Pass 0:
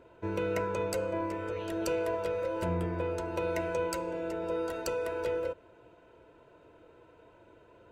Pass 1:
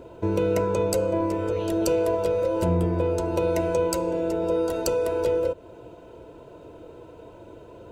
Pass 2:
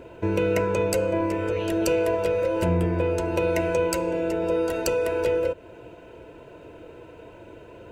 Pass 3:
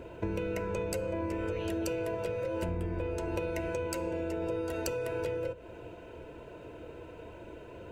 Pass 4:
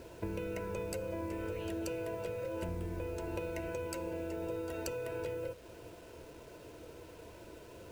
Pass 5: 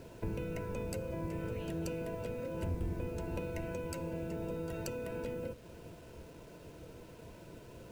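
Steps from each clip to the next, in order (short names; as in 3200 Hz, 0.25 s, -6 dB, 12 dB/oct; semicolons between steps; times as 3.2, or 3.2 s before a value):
bell 1800 Hz -11.5 dB 1.5 oct; in parallel at +2 dB: compressor, threshold -42 dBFS, peak gain reduction 13 dB; on the sum: gain +7.5 dB
band shelf 2100 Hz +8 dB 1.1 oct
octaver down 2 oct, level -5 dB; compressor, threshold -28 dBFS, peak gain reduction 10.5 dB; on a send at -19.5 dB: reverb RT60 0.55 s, pre-delay 8 ms; on the sum: gain -2.5 dB
bit-crush 9-bit; gain -5 dB
octaver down 1 oct, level +3 dB; gain -2 dB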